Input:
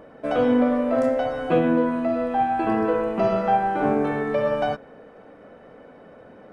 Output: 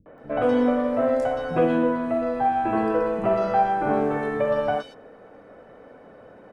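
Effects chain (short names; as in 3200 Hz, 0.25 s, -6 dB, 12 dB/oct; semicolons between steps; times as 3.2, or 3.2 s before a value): three bands offset in time lows, mids, highs 60/180 ms, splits 200/3000 Hz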